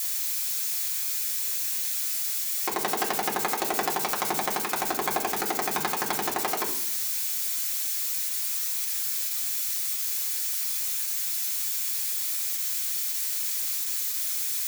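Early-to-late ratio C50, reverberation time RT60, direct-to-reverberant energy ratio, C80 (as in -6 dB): 9.0 dB, 0.65 s, -3.0 dB, 11.5 dB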